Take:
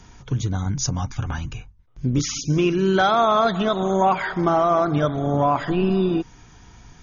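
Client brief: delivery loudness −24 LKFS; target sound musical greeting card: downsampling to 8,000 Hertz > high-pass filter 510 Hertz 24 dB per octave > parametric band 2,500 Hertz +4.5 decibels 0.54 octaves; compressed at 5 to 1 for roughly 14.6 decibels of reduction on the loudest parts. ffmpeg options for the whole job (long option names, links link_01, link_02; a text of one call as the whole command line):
ffmpeg -i in.wav -af "acompressor=threshold=-32dB:ratio=5,aresample=8000,aresample=44100,highpass=frequency=510:width=0.5412,highpass=frequency=510:width=1.3066,equalizer=frequency=2500:width_type=o:width=0.54:gain=4.5,volume=14dB" out.wav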